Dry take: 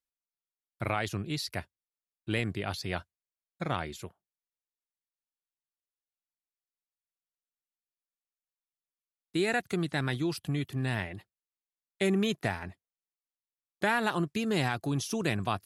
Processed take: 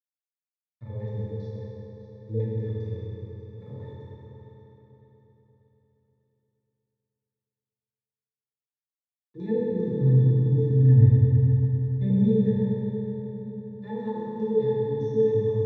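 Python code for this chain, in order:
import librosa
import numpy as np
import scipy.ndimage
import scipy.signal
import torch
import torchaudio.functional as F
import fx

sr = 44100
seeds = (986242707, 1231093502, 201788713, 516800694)

y = scipy.signal.sosfilt(scipy.signal.butter(2, 66.0, 'highpass', fs=sr, output='sos'), x)
y = fx.hum_notches(y, sr, base_hz=50, count=3)
y = fx.bass_treble(y, sr, bass_db=15, treble_db=-1, at=(9.36, 12.43), fade=0.02)
y = fx.hpss(y, sr, part='percussive', gain_db=-9)
y = fx.tilt_eq(y, sr, slope=-1.5)
y = fx.filter_lfo_lowpass(y, sr, shape='square', hz=5.0, low_hz=470.0, high_hz=5900.0, q=5.7)
y = fx.quant_dither(y, sr, seeds[0], bits=8, dither='none')
y = fx.octave_resonator(y, sr, note='A', decay_s=0.12)
y = fx.vibrato(y, sr, rate_hz=4.0, depth_cents=20.0)
y = fx.echo_feedback(y, sr, ms=594, feedback_pct=40, wet_db=-13.5)
y = fx.rev_fdn(y, sr, rt60_s=3.7, lf_ratio=1.0, hf_ratio=0.65, size_ms=17.0, drr_db=-8.0)
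y = F.gain(torch.from_numpy(y), -2.5).numpy()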